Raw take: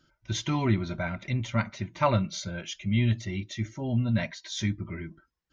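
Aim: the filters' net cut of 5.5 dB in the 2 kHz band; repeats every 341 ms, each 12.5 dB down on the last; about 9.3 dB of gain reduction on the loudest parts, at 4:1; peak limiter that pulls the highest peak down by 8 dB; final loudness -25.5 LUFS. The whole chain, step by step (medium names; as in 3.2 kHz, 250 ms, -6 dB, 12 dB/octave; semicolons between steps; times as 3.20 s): peaking EQ 2 kHz -7 dB; compression 4:1, threshold -31 dBFS; peak limiter -29 dBFS; feedback delay 341 ms, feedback 24%, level -12.5 dB; trim +13 dB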